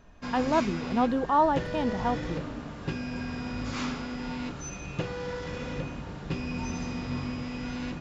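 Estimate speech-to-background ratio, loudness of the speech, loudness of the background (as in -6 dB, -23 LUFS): 7.5 dB, -27.5 LUFS, -35.0 LUFS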